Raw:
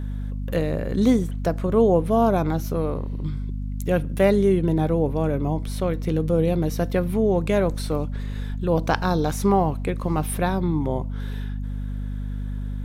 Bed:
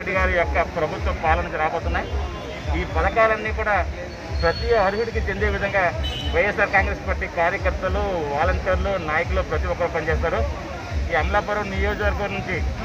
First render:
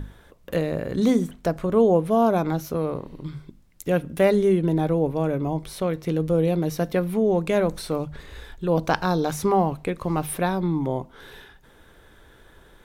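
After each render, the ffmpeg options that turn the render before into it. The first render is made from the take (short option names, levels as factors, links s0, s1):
-af "bandreject=f=50:t=h:w=6,bandreject=f=100:t=h:w=6,bandreject=f=150:t=h:w=6,bandreject=f=200:t=h:w=6,bandreject=f=250:t=h:w=6"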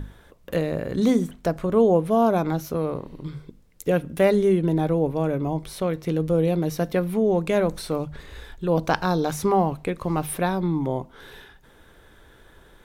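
-filter_complex "[0:a]asettb=1/sr,asplit=3[s0][s1][s2];[s0]atrim=end=3.274[s3];[s1]atrim=start=3.27:end=3.91,asetpts=PTS-STARTPTS,afade=t=in:d=0.004:c=qsin,afade=t=out:st=0.636:d=0.004:c=qsin,equalizer=f=470:t=o:w=0.33:g=10[s4];[s2]atrim=start=3.906[s5];[s3][s4]acrossfade=d=0.004:c1=hsin:c2=qsin[s6];[s6][s5]acrossfade=d=0.004:c1=qsin:c2=hsin"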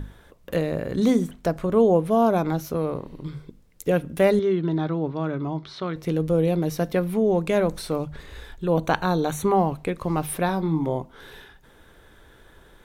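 -filter_complex "[0:a]asettb=1/sr,asplit=3[s0][s1][s2];[s0]atrim=end=4.394[s3];[s1]atrim=start=4.39:end=5.96,asetpts=PTS-STARTPTS,afade=t=in:d=0.004:c=qsin,afade=t=out:st=1.566:d=0.004:c=qsin,highpass=110,equalizer=f=210:t=q:w=4:g=-8,equalizer=f=510:t=q:w=4:g=-10,equalizer=f=760:t=q:w=4:g=-4,equalizer=f=1300:t=q:w=4:g=5,equalizer=f=2500:t=q:w=4:g=-5,equalizer=f=3900:t=q:w=4:g=4,lowpass=f=5000:w=0.5412,lowpass=f=5000:w=1.3066[s4];[s2]atrim=start=5.956[s5];[s3][s4]acrossfade=d=0.004:c1=hsin:c2=qsin[s6];[s6][s5]acrossfade=d=0.004:c1=qsin:c2=hsin,asettb=1/sr,asplit=3[s7][s8][s9];[s7]atrim=end=8.644[s10];[s8]atrim=start=8.64:end=9.57,asetpts=PTS-STARTPTS,afade=t=in:d=0.004:c=qsin,afade=t=out:st=0.926:d=0.004:c=qsin,asuperstop=centerf=5100:order=8:qfactor=3.9[s11];[s9]atrim=start=9.566[s12];[s10][s11]acrossfade=d=0.004:c1=hsin:c2=qsin[s13];[s13][s12]acrossfade=d=0.004:c1=qsin:c2=hsin,asettb=1/sr,asplit=3[s14][s15][s16];[s14]atrim=end=10.464[s17];[s15]atrim=start=10.46:end=10.95,asetpts=PTS-STARTPTS,afade=t=in:d=0.004:c=qsin,afade=t=out:st=0.486:d=0.004:c=qsin,asplit=2[s18][s19];[s19]adelay=25,volume=0.335[s20];[s18][s20]amix=inputs=2:normalize=0,atrim=end_sample=21609[s21];[s16]atrim=start=10.946[s22];[s17][s21]acrossfade=d=0.004:c1=hsin:c2=qsin[s23];[s23][s22]acrossfade=d=0.004:c1=qsin:c2=hsin"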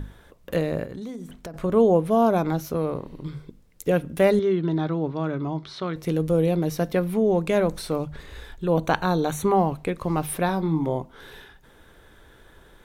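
-filter_complex "[0:a]asettb=1/sr,asplit=3[s0][s1][s2];[s0]atrim=end=0.844[s3];[s1]atrim=start=0.84:end=1.54,asetpts=PTS-STARTPTS,afade=t=in:d=0.004:c=qsin,afade=t=out:st=0.696:d=0.004:c=qsin,acompressor=threshold=0.0224:ratio=6:attack=3.2:release=140:knee=1:detection=peak[s4];[s2]atrim=start=1.536[s5];[s3][s4]acrossfade=d=0.004:c1=hsin:c2=qsin[s6];[s6][s5]acrossfade=d=0.004:c1=qsin:c2=hsin,asettb=1/sr,asplit=3[s7][s8][s9];[s7]atrim=end=4.624[s10];[s8]atrim=start=4.62:end=6.47,asetpts=PTS-STARTPTS,afade=t=in:d=0.004:c=qsin,afade=t=out:st=1.846:d=0.004:c=qsin,equalizer=f=11000:w=0.63:g=4.5[s11];[s9]atrim=start=6.466[s12];[s10][s11]acrossfade=d=0.004:c1=hsin:c2=qsin[s13];[s13][s12]acrossfade=d=0.004:c1=qsin:c2=hsin"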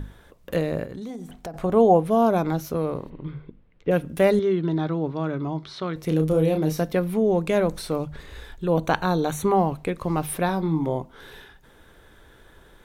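-filter_complex "[0:a]asettb=1/sr,asplit=3[s0][s1][s2];[s0]atrim=end=1.104[s3];[s1]atrim=start=1.1:end=2.03,asetpts=PTS-STARTPTS,afade=t=in:d=0.004:c=qsin,afade=t=out:st=0.926:d=0.004:c=qsin,equalizer=f=760:w=4.9:g=12.5[s4];[s2]atrim=start=2.026[s5];[s3][s4]acrossfade=d=0.004:c1=hsin:c2=qsin[s6];[s6][s5]acrossfade=d=0.004:c1=qsin:c2=hsin,asplit=3[s7][s8][s9];[s7]afade=t=out:st=3.09:d=0.02[s10];[s8]lowpass=f=3000:w=0.5412,lowpass=f=3000:w=1.3066,afade=t=in:st=3.09:d=0.02,afade=t=out:st=3.9:d=0.02[s11];[s9]afade=t=in:st=3.9:d=0.02[s12];[s10][s11][s12]amix=inputs=3:normalize=0,asettb=1/sr,asplit=3[s13][s14][s15];[s13]atrim=end=6.084[s16];[s14]atrim=start=6.08:end=6.82,asetpts=PTS-STARTPTS,afade=t=in:d=0.004:c=qsin,afade=t=out:st=0.736:d=0.004:c=qsin,asplit=2[s17][s18];[s18]adelay=32,volume=0.501[s19];[s17][s19]amix=inputs=2:normalize=0,atrim=end_sample=32634[s20];[s15]atrim=start=6.816[s21];[s16][s20]acrossfade=d=0.004:c1=hsin:c2=qsin[s22];[s22][s21]acrossfade=d=0.004:c1=qsin:c2=hsin"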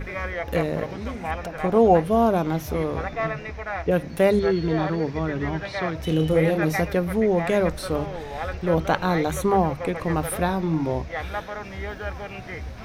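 -filter_complex "[1:a]volume=0.316[s0];[0:a][s0]amix=inputs=2:normalize=0"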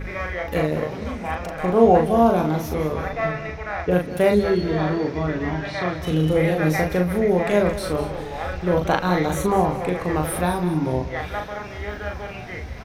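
-filter_complex "[0:a]asplit=2[s0][s1];[s1]adelay=39,volume=0.668[s2];[s0][s2]amix=inputs=2:normalize=0,aecho=1:1:195|390|585:0.224|0.0761|0.0259"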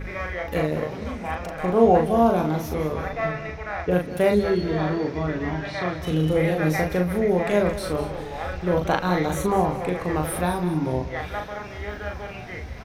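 -af "volume=0.794"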